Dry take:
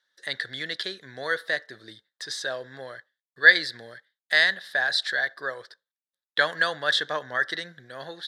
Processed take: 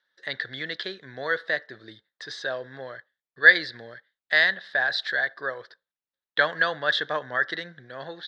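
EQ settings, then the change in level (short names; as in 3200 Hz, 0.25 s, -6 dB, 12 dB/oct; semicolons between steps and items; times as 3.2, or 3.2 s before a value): air absorption 180 m; +2.0 dB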